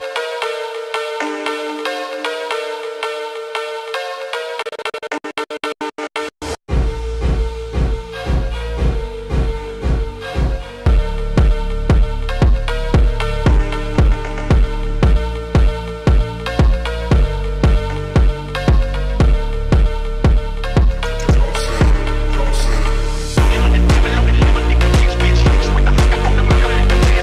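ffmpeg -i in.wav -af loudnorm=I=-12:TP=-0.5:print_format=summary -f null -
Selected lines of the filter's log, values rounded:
Input Integrated:    -17.2 LUFS
Input True Peak:      -4.2 dBTP
Input LRA:             8.4 LU
Input Threshold:     -27.2 LUFS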